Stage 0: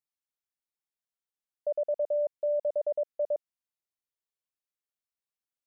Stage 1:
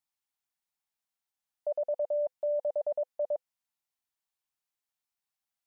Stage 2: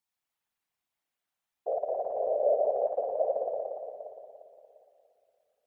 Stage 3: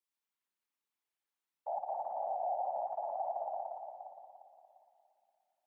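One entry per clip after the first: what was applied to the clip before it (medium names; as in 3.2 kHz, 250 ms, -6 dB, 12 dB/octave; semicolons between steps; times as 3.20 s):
FFT filter 230 Hz 0 dB, 510 Hz -6 dB, 790 Hz +7 dB, 1.2 kHz +3 dB
spring tank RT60 2.8 s, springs 58 ms, chirp 75 ms, DRR -4.5 dB; whisper effect
peak limiter -22.5 dBFS, peak gain reduction 6 dB; frequency shift +140 Hz; trim -6 dB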